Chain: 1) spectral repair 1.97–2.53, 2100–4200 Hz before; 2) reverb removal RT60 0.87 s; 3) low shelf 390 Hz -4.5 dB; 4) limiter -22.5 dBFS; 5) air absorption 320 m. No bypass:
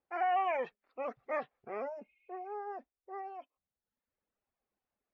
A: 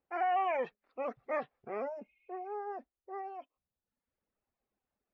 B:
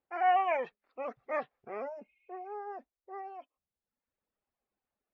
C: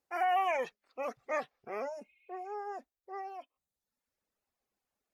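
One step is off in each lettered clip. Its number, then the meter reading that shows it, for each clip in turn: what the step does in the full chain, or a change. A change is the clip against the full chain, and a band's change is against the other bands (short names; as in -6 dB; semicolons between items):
3, 250 Hz band +2.5 dB; 4, crest factor change +3.5 dB; 5, 2 kHz band +2.0 dB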